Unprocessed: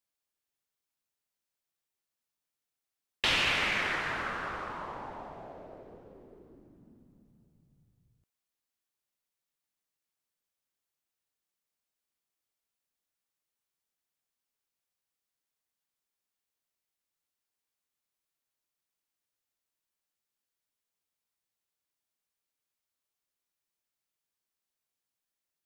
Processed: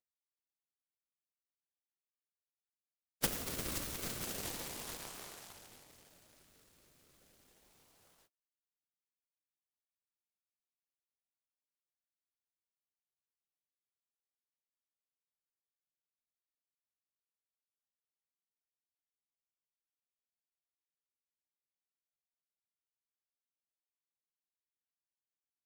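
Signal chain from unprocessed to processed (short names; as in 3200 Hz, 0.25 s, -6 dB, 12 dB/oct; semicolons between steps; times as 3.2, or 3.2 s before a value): minimum comb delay 4.6 ms; brick-wall FIR band-stop 590–5500 Hz; spectral gate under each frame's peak -30 dB weak; bell 4300 Hz +11 dB 2.8 oct; in parallel at -4.5 dB: decimation with a swept rate 34×, swing 100% 0.33 Hz; on the sum: noise-modulated delay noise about 1700 Hz, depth 0.072 ms; gain +16.5 dB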